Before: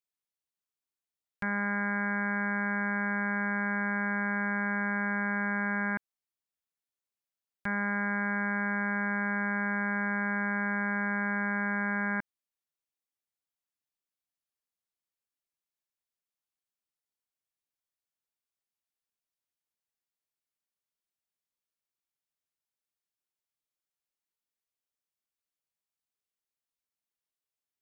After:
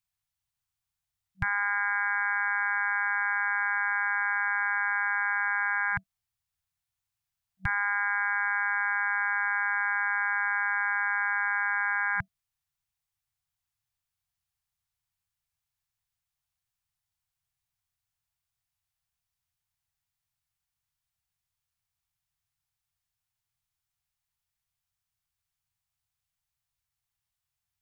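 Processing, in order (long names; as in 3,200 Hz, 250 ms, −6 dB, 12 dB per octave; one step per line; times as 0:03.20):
low shelf with overshoot 160 Hz +12.5 dB, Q 1.5
brick-wall band-stop 190–660 Hz
level +5 dB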